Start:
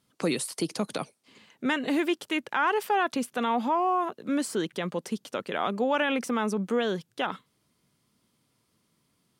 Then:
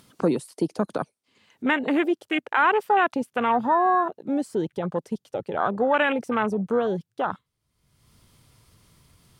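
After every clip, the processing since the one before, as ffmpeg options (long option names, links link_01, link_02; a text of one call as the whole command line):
ffmpeg -i in.wav -af "asubboost=boost=9.5:cutoff=74,afwtdn=0.0251,acompressor=mode=upward:threshold=-44dB:ratio=2.5,volume=6dB" out.wav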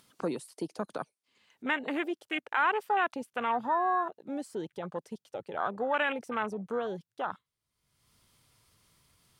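ffmpeg -i in.wav -af "lowshelf=frequency=500:gain=-8,volume=-5.5dB" out.wav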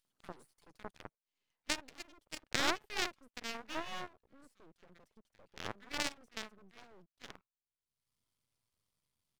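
ffmpeg -i in.wav -filter_complex "[0:a]aeval=exprs='0.2*(cos(1*acos(clip(val(0)/0.2,-1,1)))-cos(1*PI/2))+0.0708*(cos(3*acos(clip(val(0)/0.2,-1,1)))-cos(3*PI/2))':channel_layout=same,acrossover=split=1600[link_01][link_02];[link_01]adelay=50[link_03];[link_03][link_02]amix=inputs=2:normalize=0,aeval=exprs='max(val(0),0)':channel_layout=same,volume=8.5dB" out.wav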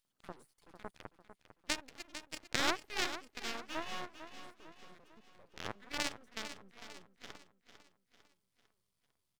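ffmpeg -i in.wav -af "aecho=1:1:450|900|1350|1800|2250:0.282|0.13|0.0596|0.0274|0.0126" out.wav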